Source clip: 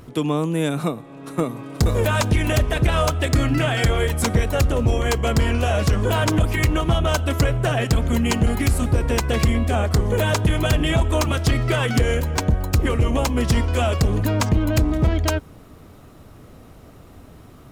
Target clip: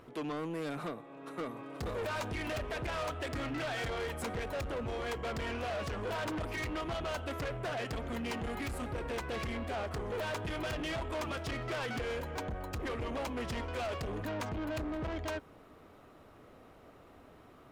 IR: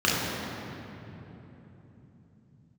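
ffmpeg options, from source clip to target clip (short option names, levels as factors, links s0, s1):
-af "bass=f=250:g=-12,treble=f=4000:g=-11,asoftclip=type=tanh:threshold=0.0447,volume=0.473"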